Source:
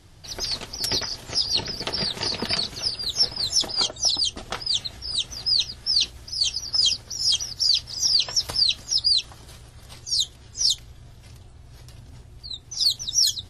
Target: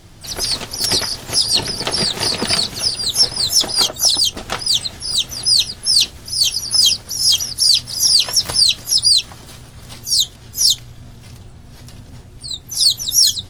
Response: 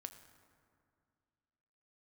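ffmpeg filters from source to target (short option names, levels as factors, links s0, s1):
-filter_complex "[0:a]acontrast=74,asplit=3[s0][s1][s2];[s1]asetrate=52444,aresample=44100,atempo=0.840896,volume=0.178[s3];[s2]asetrate=88200,aresample=44100,atempo=0.5,volume=0.355[s4];[s0][s3][s4]amix=inputs=3:normalize=0,equalizer=f=61:w=4.8:g=-7.5,volume=1.12"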